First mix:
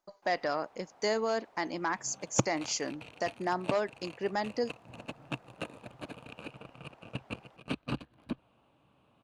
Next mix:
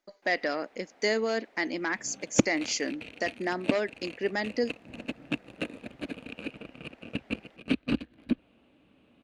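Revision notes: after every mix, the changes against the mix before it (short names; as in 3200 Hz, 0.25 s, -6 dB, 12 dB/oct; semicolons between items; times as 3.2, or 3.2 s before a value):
second sound: add low shelf 280 Hz +8 dB; master: add ten-band EQ 125 Hz -11 dB, 250 Hz +8 dB, 500 Hz +3 dB, 1000 Hz -8 dB, 2000 Hz +9 dB, 4000 Hz +3 dB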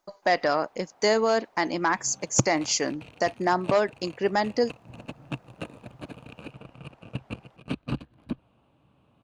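speech +8.0 dB; master: add ten-band EQ 125 Hz +11 dB, 250 Hz -8 dB, 500 Hz -3 dB, 1000 Hz +8 dB, 2000 Hz -9 dB, 4000 Hz -3 dB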